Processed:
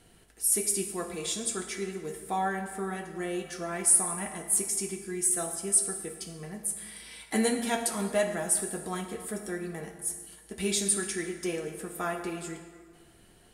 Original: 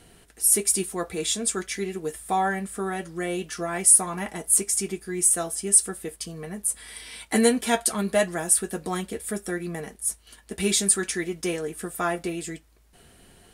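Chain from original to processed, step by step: plate-style reverb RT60 1.7 s, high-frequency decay 0.65×, DRR 5 dB; gain -6.5 dB

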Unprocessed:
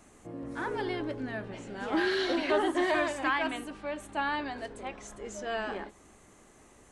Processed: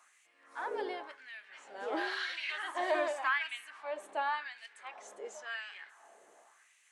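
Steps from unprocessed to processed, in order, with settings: band-limited delay 0.113 s, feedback 82%, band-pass 1200 Hz, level -23 dB; LFO high-pass sine 0.92 Hz 470–2400 Hz; gain -6.5 dB

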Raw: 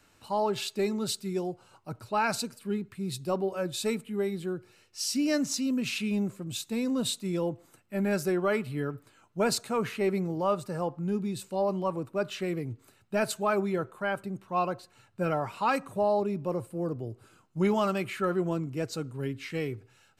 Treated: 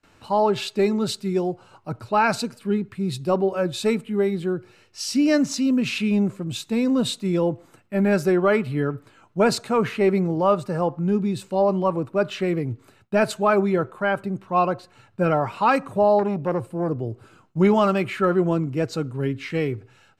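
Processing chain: gate with hold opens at -53 dBFS; LPF 3100 Hz 6 dB/oct; 16.19–16.89 core saturation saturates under 560 Hz; gain +8.5 dB

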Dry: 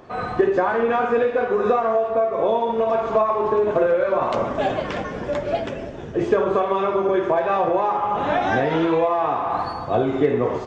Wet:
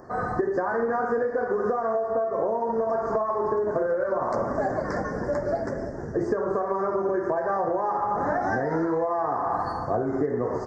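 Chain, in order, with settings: Chebyshev band-stop 1800–4900 Hz, order 3; compressor 6:1, threshold -22 dBFS, peak gain reduction 9.5 dB

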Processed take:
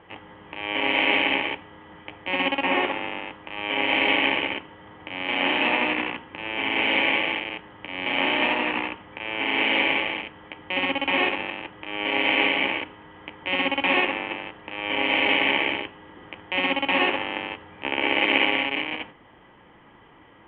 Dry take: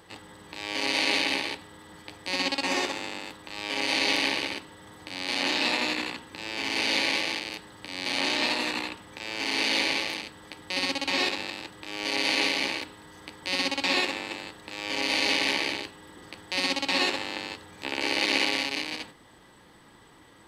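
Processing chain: in parallel at -10 dB: requantised 6-bit, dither none; on the sum: rippled Chebyshev low-pass 3200 Hz, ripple 3 dB; gain +4.5 dB

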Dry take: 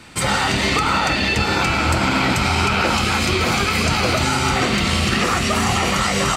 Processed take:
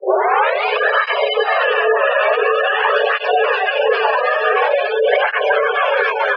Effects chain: tape start at the beginning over 0.66 s; spectral gate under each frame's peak -15 dB strong; frequency shift +360 Hz; BPF 370–2900 Hz; air absorption 250 m; tape flanging out of phase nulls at 0.47 Hz, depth 4.7 ms; gain +9 dB

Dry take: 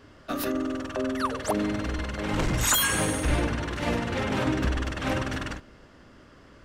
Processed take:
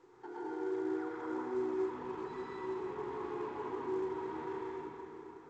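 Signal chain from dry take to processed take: compressor 12:1, threshold -29 dBFS, peak gain reduction 11.5 dB; limiter -29 dBFS, peak gain reduction 10 dB; double band-pass 510 Hz, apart 1.2 oct; varispeed +21%; vibrato 6.7 Hz 8.2 cents; reverb RT60 3.1 s, pre-delay 98 ms, DRR -6.5 dB; µ-law 128 kbps 16000 Hz

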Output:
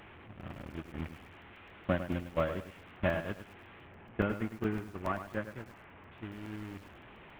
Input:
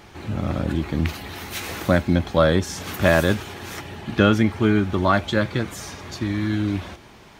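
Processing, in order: delta modulation 16 kbps, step -19.5 dBFS; compressor 4:1, threshold -22 dBFS, peak gain reduction 9.5 dB; bit-crush 10-bit; 3.87–6.12 LPF 2400 Hz 12 dB/oct; gate -22 dBFS, range -24 dB; crackling interface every 0.14 s, samples 128, zero, from 1; lo-fi delay 0.103 s, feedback 35%, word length 8-bit, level -10 dB; gain -3 dB

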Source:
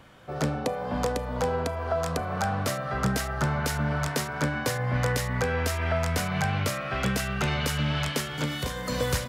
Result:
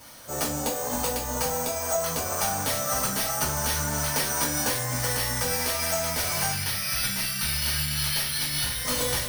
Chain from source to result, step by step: tracing distortion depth 0.48 ms; compressor, threshold -28 dBFS, peak gain reduction 7.5 dB; 6.52–8.85 band shelf 540 Hz -15.5 dB 2.4 oct; careless resampling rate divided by 6×, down none, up hold; tone controls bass -3 dB, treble +13 dB; notches 50/100/150 Hz; reverb, pre-delay 3 ms, DRR -6.5 dB; gain -3 dB

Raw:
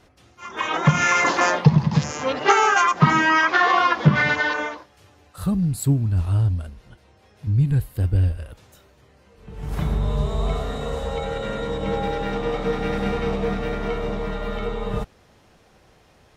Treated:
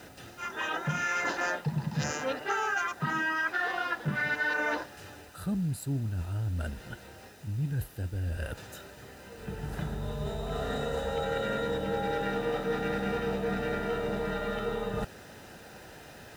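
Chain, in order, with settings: bell 1600 Hz +5.5 dB 0.46 oct; reverse; compressor 12:1, threshold -33 dBFS, peak gain reduction 25 dB; reverse; added noise pink -60 dBFS; notch comb 1100 Hz; gain +6.5 dB

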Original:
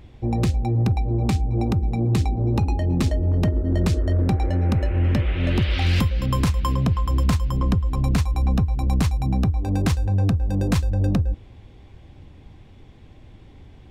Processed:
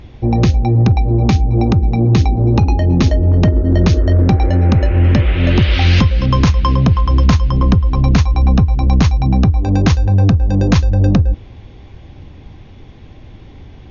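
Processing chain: brick-wall FIR low-pass 6800 Hz; gain +9 dB

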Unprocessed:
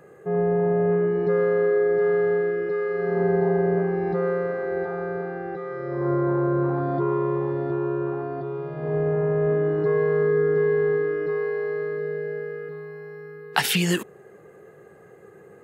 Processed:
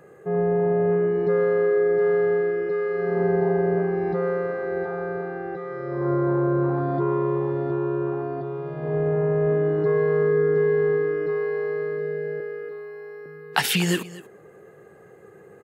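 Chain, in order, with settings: 12.4–13.26 steep high-pass 210 Hz 36 dB/oct; echo 0.238 s -18 dB

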